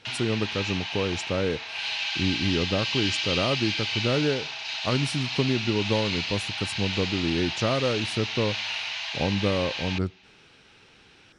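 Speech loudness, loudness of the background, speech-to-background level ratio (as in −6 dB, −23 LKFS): −28.5 LKFS, −29.0 LKFS, 0.5 dB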